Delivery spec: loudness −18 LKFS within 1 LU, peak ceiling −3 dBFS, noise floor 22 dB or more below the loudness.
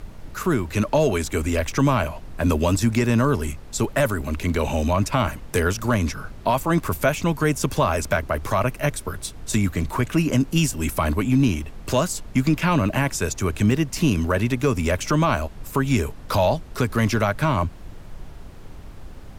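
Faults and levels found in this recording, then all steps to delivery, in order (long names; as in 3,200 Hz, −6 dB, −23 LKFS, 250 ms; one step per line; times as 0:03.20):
number of dropouts 2; longest dropout 2.5 ms; background noise floor −40 dBFS; target noise floor −45 dBFS; integrated loudness −22.5 LKFS; sample peak −8.5 dBFS; target loudness −18.0 LKFS
→ repair the gap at 0:08.17/0:13.71, 2.5 ms
noise reduction from a noise print 6 dB
level +4.5 dB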